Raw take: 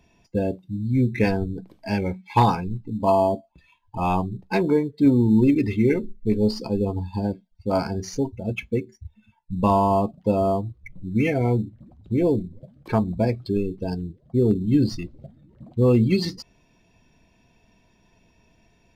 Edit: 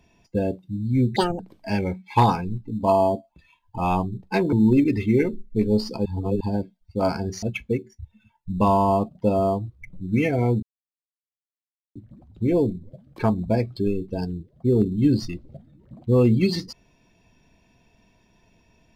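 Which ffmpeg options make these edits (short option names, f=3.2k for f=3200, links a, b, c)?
-filter_complex "[0:a]asplit=8[a][b][c][d][e][f][g][h];[a]atrim=end=1.164[i];[b]atrim=start=1.16:end=1.59,asetpts=PTS-STARTPTS,asetrate=80703,aresample=44100,atrim=end_sample=10362,asetpts=PTS-STARTPTS[j];[c]atrim=start=1.586:end=4.722[k];[d]atrim=start=5.228:end=6.762[l];[e]atrim=start=6.758:end=7.112,asetpts=PTS-STARTPTS,areverse[m];[f]atrim=start=7.108:end=8.132[n];[g]atrim=start=8.448:end=11.65,asetpts=PTS-STARTPTS,afade=t=out:st=3.198:d=0.004:c=hsin,apad=pad_dur=1.33[o];[h]atrim=start=11.65,asetpts=PTS-STARTPTS,afade=t=in:d=0.004:c=hsin[p];[i][j]acrossfade=d=0.004:c1=hsin:c2=hsin[q];[q][k]acrossfade=d=0.004:c1=hsin:c2=hsin[r];[r][l]acrossfade=d=0.004:c1=hsin:c2=hsin[s];[s][m]acrossfade=d=0.004:c1=hsin:c2=hsin[t];[t][n]acrossfade=d=0.004:c1=hsin:c2=hsin[u];[o][p]concat=n=2:v=0:a=1[v];[u][v]acrossfade=d=0.004:c1=hsin:c2=hsin"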